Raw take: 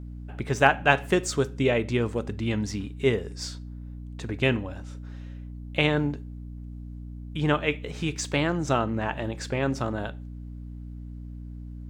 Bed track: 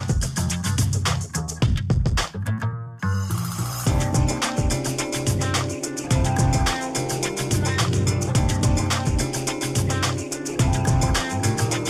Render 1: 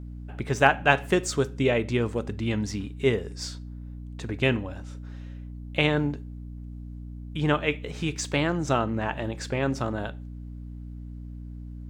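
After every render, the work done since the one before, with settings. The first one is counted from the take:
no processing that can be heard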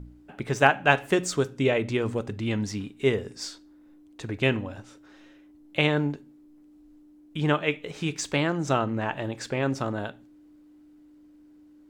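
hum removal 60 Hz, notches 4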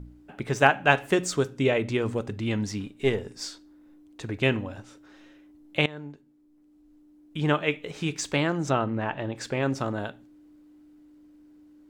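0:02.85–0:03.41: gain on one half-wave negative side −3 dB
0:05.86–0:07.54: fade in, from −18.5 dB
0:08.70–0:09.36: high-frequency loss of the air 130 metres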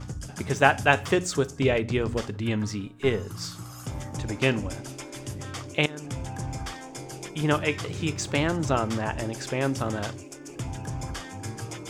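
mix in bed track −14 dB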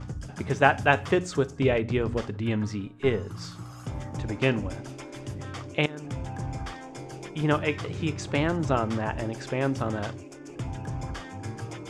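low-pass filter 12,000 Hz 12 dB per octave
high-shelf EQ 4,600 Hz −11.5 dB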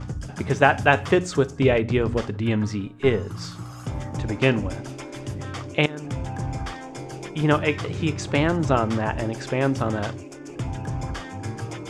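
level +4.5 dB
brickwall limiter −2 dBFS, peak gain reduction 3 dB

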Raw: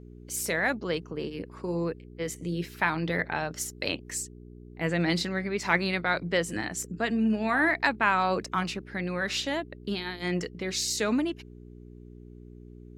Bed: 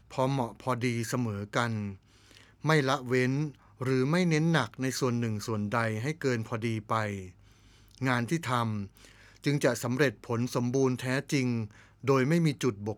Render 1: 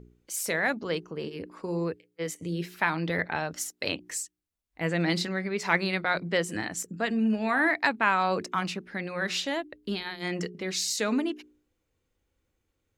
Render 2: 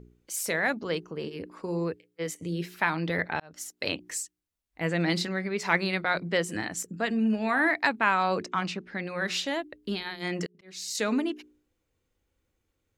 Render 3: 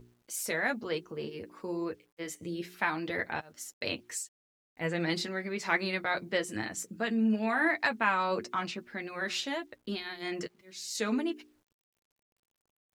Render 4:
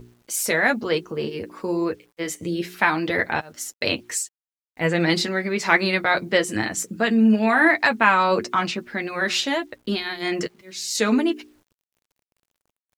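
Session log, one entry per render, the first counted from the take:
hum removal 60 Hz, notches 7
0:03.40–0:03.82: fade in; 0:08.41–0:09.06: low-pass filter 7,000 Hz; 0:10.46–0:10.95: volume swells 528 ms
flanger 0.21 Hz, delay 8.1 ms, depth 1.1 ms, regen −27%; bit-depth reduction 12 bits, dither none
level +11 dB; brickwall limiter −3 dBFS, peak gain reduction 2.5 dB

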